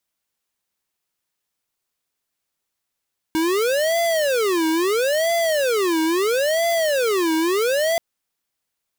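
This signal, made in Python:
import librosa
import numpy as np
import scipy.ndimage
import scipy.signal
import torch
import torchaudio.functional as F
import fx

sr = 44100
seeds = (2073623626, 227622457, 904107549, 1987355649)

y = fx.siren(sr, length_s=4.63, kind='wail', low_hz=318.0, high_hz=679.0, per_s=0.75, wave='square', level_db=-19.5)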